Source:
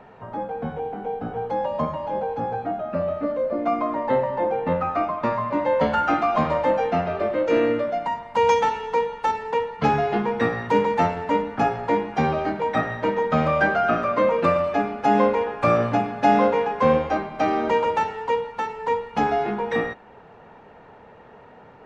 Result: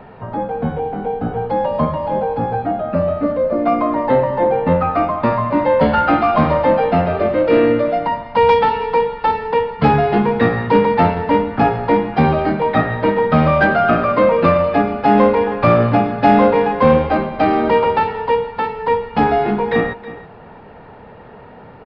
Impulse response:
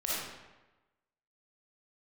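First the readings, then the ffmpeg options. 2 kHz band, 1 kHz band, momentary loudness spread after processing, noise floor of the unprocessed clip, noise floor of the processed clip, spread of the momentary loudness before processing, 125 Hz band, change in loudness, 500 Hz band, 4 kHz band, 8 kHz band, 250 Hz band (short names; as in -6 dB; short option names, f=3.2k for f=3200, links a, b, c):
+6.0 dB, +6.0 dB, 7 LU, -48 dBFS, -39 dBFS, 8 LU, +10.5 dB, +7.0 dB, +7.0 dB, +5.5 dB, n/a, +9.0 dB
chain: -filter_complex "[0:a]lowshelf=f=230:g=7,asplit=2[a][b];[b]aecho=0:1:320:0.15[c];[a][c]amix=inputs=2:normalize=0,aresample=11025,aresample=44100,acontrast=58"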